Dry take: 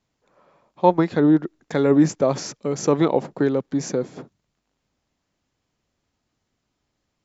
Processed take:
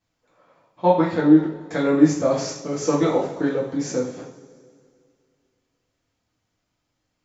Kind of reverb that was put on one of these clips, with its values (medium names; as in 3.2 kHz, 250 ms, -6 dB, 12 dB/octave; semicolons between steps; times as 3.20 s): two-slope reverb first 0.48 s, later 2.3 s, from -19 dB, DRR -7 dB; trim -7 dB